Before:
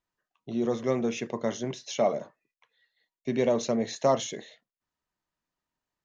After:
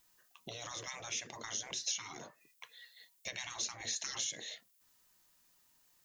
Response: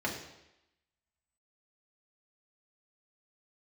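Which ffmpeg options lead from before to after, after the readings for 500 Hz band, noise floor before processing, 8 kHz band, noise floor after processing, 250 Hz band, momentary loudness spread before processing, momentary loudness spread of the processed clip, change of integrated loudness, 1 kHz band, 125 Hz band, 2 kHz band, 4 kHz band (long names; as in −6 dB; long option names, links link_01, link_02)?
−26.5 dB, below −85 dBFS, can't be measured, −71 dBFS, −27.5 dB, 10 LU, 18 LU, −10.5 dB, −15.5 dB, −18.5 dB, −3.0 dB, +0.5 dB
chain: -af "afftfilt=real='re*lt(hypot(re,im),0.0562)':imag='im*lt(hypot(re,im),0.0562)':win_size=1024:overlap=0.75,acompressor=threshold=-53dB:ratio=12,crystalizer=i=5:c=0,volume=7dB"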